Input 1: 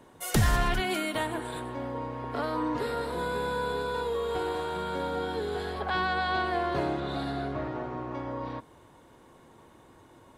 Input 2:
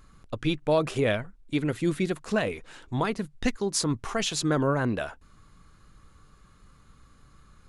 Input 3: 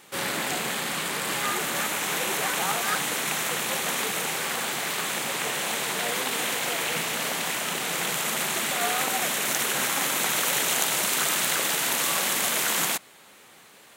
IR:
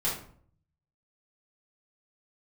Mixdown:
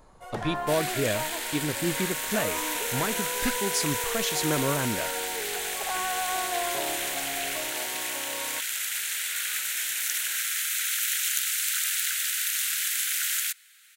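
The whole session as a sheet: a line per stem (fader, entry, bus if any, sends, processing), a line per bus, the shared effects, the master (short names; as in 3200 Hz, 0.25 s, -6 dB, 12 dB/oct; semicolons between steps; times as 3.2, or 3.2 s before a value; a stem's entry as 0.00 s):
0.0 dB, 0.00 s, no send, band-pass 750 Hz, Q 1.3
-3.0 dB, 0.00 s, no send, dry
-4.5 dB, 0.55 s, no send, steep high-pass 1400 Hz 72 dB/oct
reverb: off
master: high shelf 6700 Hz +5 dB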